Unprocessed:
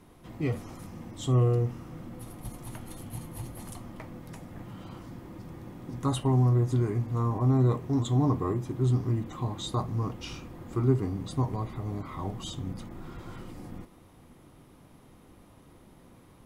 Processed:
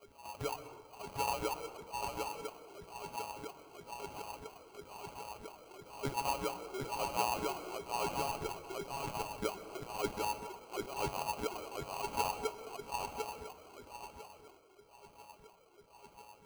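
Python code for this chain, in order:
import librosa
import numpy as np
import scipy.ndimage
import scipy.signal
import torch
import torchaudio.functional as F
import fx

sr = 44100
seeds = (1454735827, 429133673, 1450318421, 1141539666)

p1 = np.r_[np.sort(x[:len(x) // 32 * 32].reshape(-1, 32), axis=1).ravel(), x[len(x) // 32 * 32:]]
p2 = scipy.signal.sosfilt(scipy.signal.butter(4, 280.0, 'highpass', fs=sr, output='sos'), p1)
p3 = fx.tilt_eq(p2, sr, slope=4.5)
p4 = fx.over_compress(p3, sr, threshold_db=-29.0, ratio=-0.5)
p5 = p3 + (p4 * 10.0 ** (2.0 / 20.0))
p6 = fx.wah_lfo(p5, sr, hz=1.0, low_hz=380.0, high_hz=2900.0, q=17.0)
p7 = fx.tube_stage(p6, sr, drive_db=33.0, bias=0.55, at=(8.08, 9.43))
p8 = fx.sample_hold(p7, sr, seeds[0], rate_hz=1800.0, jitter_pct=0)
p9 = p8 + fx.echo_single(p8, sr, ms=748, db=-4.5, dry=0)
p10 = fx.rev_plate(p9, sr, seeds[1], rt60_s=1.1, hf_ratio=0.45, predelay_ms=115, drr_db=12.0)
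y = p10 * 10.0 ** (2.5 / 20.0)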